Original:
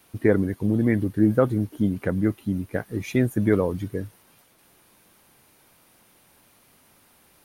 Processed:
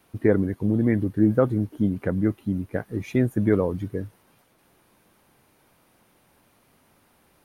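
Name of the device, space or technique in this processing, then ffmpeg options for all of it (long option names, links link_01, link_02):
behind a face mask: -af "highshelf=frequency=2400:gain=-8"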